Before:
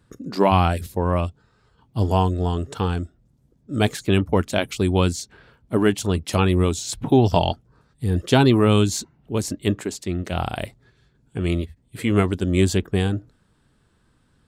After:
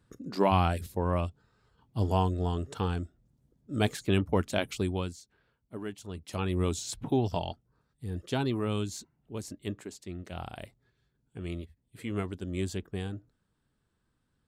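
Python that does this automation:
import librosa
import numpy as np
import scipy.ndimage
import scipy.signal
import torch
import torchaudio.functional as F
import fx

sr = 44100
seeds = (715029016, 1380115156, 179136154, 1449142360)

y = fx.gain(x, sr, db=fx.line((4.77, -7.5), (5.21, -20.0), (6.05, -20.0), (6.76, -7.0), (7.46, -14.5)))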